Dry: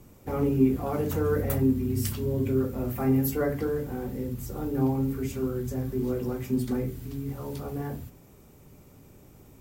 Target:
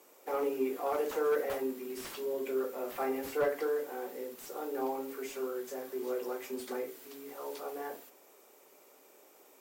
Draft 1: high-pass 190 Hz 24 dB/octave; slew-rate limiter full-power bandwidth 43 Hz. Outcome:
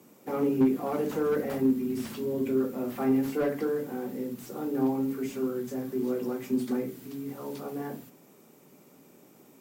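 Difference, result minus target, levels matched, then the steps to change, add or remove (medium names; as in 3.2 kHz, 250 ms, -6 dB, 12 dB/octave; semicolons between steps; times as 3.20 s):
250 Hz band +8.0 dB
change: high-pass 420 Hz 24 dB/octave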